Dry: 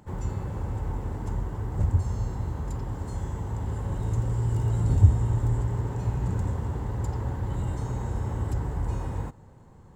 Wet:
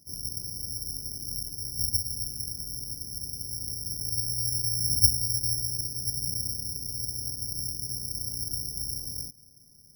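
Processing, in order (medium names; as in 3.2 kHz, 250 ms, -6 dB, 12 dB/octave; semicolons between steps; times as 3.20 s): ten-band graphic EQ 125 Hz +4 dB, 250 Hz +6 dB, 1 kHz -12 dB, 2 kHz -8 dB; careless resampling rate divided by 8×, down filtered, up zero stuff; trim -17 dB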